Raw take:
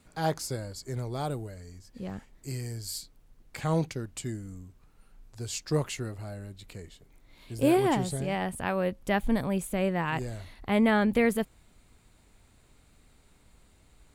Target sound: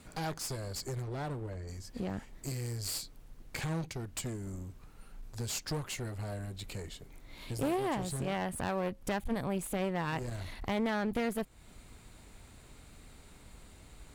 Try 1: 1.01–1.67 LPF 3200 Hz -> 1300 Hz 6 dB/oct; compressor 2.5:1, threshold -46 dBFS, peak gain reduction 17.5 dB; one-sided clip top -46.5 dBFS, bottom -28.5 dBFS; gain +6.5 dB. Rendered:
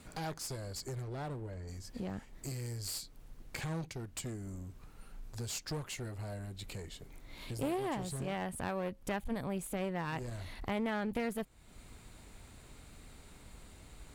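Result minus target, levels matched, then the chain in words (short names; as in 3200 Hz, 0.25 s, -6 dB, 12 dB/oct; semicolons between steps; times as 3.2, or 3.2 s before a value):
compressor: peak gain reduction +4 dB
1.01–1.67 LPF 3200 Hz -> 1300 Hz 6 dB/oct; compressor 2.5:1, threshold -39.5 dBFS, peak gain reduction 13.5 dB; one-sided clip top -46.5 dBFS, bottom -28.5 dBFS; gain +6.5 dB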